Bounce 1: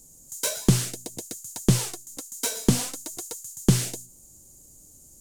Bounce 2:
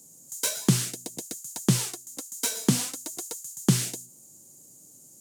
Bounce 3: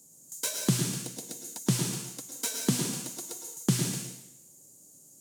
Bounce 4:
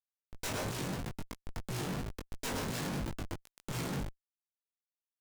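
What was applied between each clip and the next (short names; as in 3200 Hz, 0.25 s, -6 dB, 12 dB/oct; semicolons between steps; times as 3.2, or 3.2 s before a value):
dynamic EQ 570 Hz, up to -6 dB, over -40 dBFS, Q 0.91; HPF 130 Hz 24 dB/oct
plate-style reverb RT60 0.81 s, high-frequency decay 1×, pre-delay 95 ms, DRR 3.5 dB; gain -4.5 dB
Schmitt trigger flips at -30.5 dBFS; chorus 2.9 Hz, delay 18 ms, depth 3.4 ms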